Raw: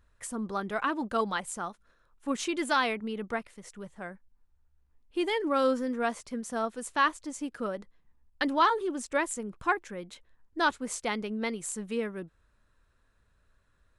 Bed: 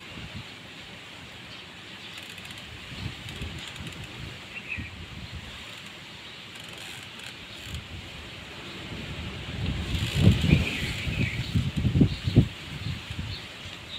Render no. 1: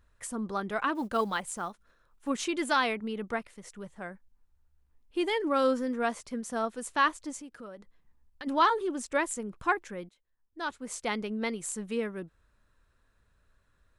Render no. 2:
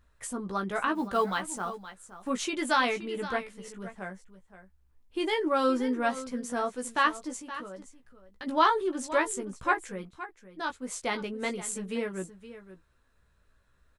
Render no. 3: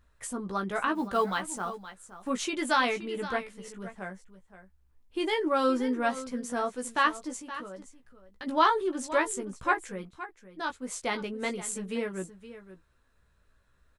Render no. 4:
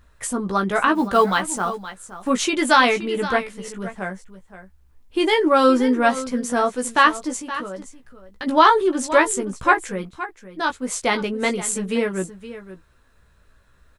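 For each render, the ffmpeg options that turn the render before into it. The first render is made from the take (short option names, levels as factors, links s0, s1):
-filter_complex "[0:a]asettb=1/sr,asplit=3[s0][s1][s2];[s0]atrim=end=0.954[s3];[s1]atrim=start=0.95:end=2.28,asetpts=PTS-STARTPTS,afade=t=in:d=0.004:c=qsin,afade=t=out:st=1.326:d=0.004:c=qsin,acrusher=bits=8:mode=log:mix=0:aa=0.000001[s4];[s2]atrim=start=2.276[s5];[s3][s4]acrossfade=d=0.004:c1=hsin:c2=qsin[s6];[s6][s5]acrossfade=d=0.004:c1=qsin:c2=hsin,asplit=3[s7][s8][s9];[s7]afade=t=out:st=7.4:d=0.02[s10];[s8]acompressor=threshold=0.00316:ratio=2:attack=3.2:release=140:knee=1:detection=peak,afade=t=in:st=7.4:d=0.02,afade=t=out:st=8.46:d=0.02[s11];[s9]afade=t=in:st=8.46:d=0.02[s12];[s10][s11][s12]amix=inputs=3:normalize=0,asplit=2[s13][s14];[s13]atrim=end=10.09,asetpts=PTS-STARTPTS,afade=t=out:st=10.086:d=0.004:c=hsin:silence=0.1[s15];[s14]atrim=start=10.09,asetpts=PTS-STARTPTS,afade=t=in:d=1.02:c=qua:silence=0.1[s16];[s15][s16]concat=n=2:v=0:a=1"
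-filter_complex "[0:a]asplit=2[s0][s1];[s1]adelay=16,volume=0.562[s2];[s0][s2]amix=inputs=2:normalize=0,aecho=1:1:520:0.2"
-af anull
-af "volume=3.35,alimiter=limit=0.794:level=0:latency=1"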